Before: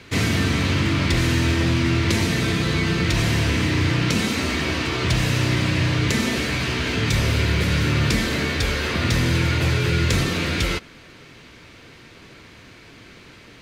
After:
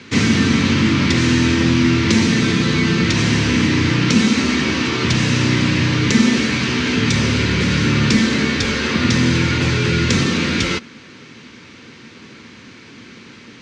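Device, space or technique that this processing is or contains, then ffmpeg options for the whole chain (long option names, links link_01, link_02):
car door speaker: -af "highpass=110,equalizer=frequency=230:width_type=q:width=4:gain=9,equalizer=frequency=660:width_type=q:width=4:gain=-9,equalizer=frequency=5900:width_type=q:width=4:gain=3,lowpass=frequency=7400:width=0.5412,lowpass=frequency=7400:width=1.3066,volume=4.5dB"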